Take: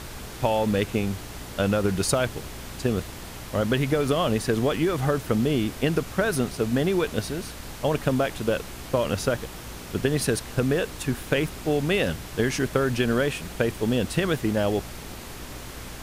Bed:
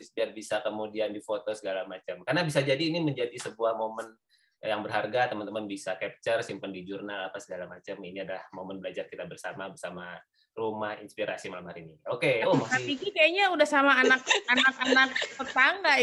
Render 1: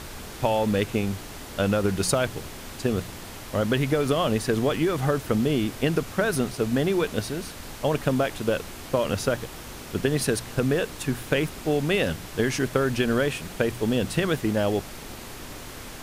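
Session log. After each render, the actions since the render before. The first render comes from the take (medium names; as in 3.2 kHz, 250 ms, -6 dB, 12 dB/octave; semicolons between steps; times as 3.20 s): de-hum 60 Hz, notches 3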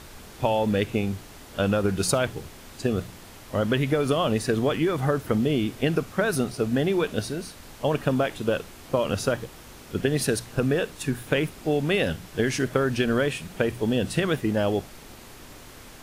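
noise print and reduce 6 dB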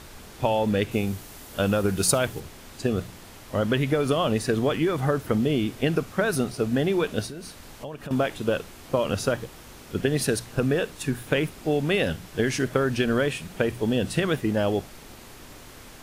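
0.91–2.40 s: treble shelf 8.9 kHz +10 dB; 7.26–8.11 s: compression 4:1, threshold -34 dBFS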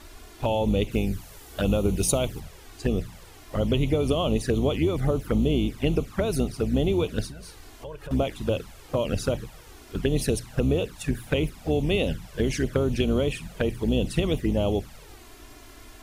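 octave divider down 2 oct, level -3 dB; touch-sensitive flanger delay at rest 3.6 ms, full sweep at -19 dBFS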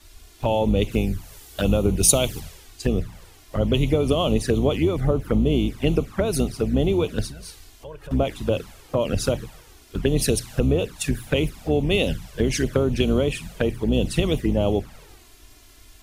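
in parallel at +3 dB: compression, threshold -31 dBFS, peak gain reduction 12.5 dB; on the sum: three bands expanded up and down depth 70%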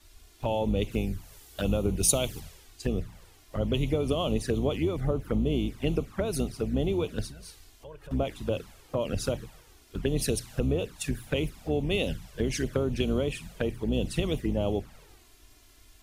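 trim -7 dB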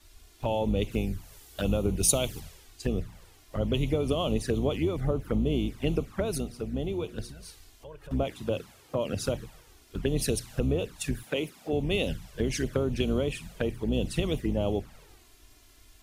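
6.38–7.29 s: feedback comb 120 Hz, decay 1.5 s, mix 40%; 8.27–9.26 s: high-pass 83 Hz; 11.23–11.73 s: high-pass 230 Hz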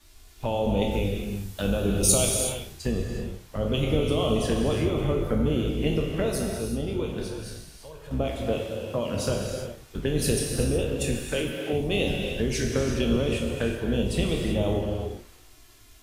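spectral sustain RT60 0.33 s; gated-style reverb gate 400 ms flat, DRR 1 dB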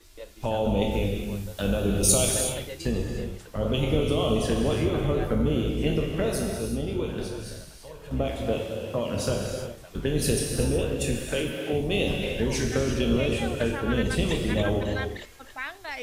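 add bed -13 dB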